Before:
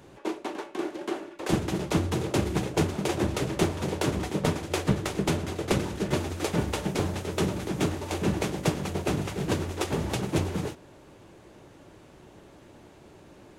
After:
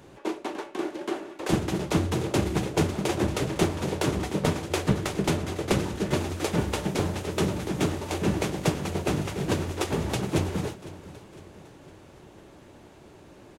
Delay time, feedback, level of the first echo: 506 ms, 50%, −17.5 dB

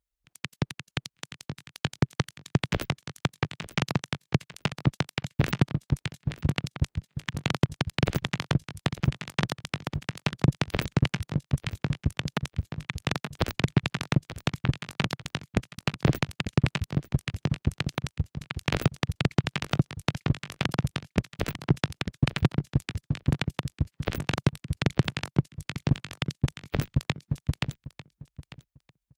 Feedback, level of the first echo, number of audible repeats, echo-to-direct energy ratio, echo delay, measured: 17%, −16.5 dB, 2, −16.5 dB, 897 ms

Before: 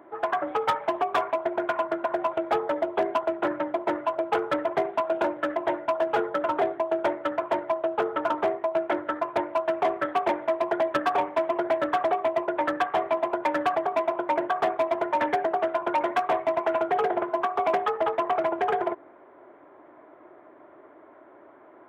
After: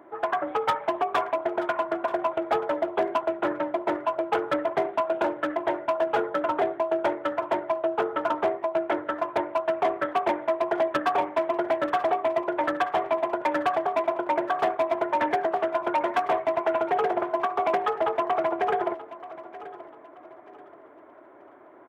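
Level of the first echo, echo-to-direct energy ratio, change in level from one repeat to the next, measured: −16.0 dB, −15.5 dB, −9.5 dB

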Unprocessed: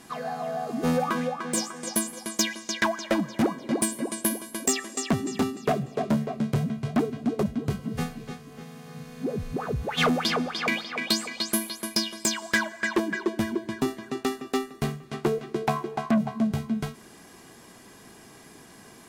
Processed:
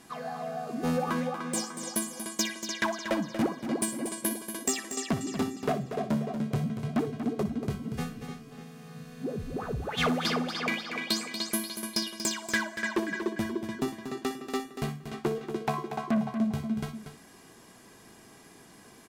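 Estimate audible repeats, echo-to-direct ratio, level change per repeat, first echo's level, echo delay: 2, −8.0 dB, repeats not evenly spaced, −13.5 dB, 60 ms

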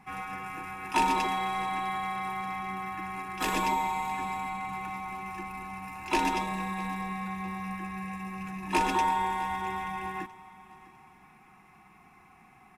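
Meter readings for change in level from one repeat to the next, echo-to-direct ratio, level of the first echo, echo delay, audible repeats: −9.0 dB, −20.0 dB, −20.5 dB, 654 ms, 2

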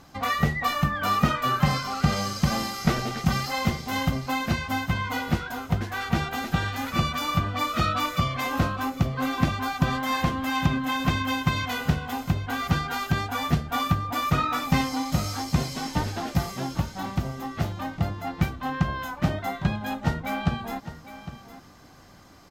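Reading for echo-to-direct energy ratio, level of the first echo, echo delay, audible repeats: −13.5 dB, −13.5 dB, 807 ms, 1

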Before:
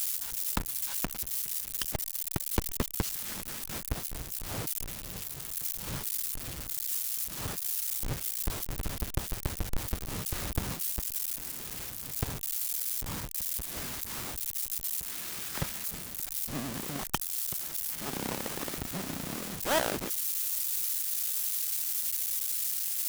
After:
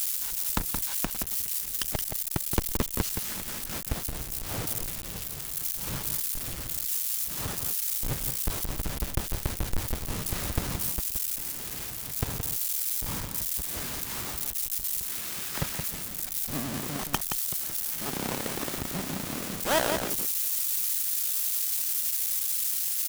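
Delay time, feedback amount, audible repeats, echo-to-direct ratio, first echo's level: 172 ms, repeats not evenly spaced, 1, −6.5 dB, −6.5 dB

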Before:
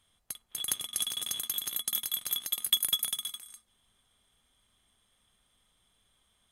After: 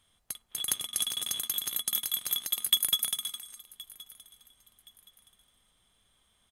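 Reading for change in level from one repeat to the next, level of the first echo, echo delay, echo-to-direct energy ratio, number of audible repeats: −10.0 dB, −21.0 dB, 1,071 ms, −20.5 dB, 2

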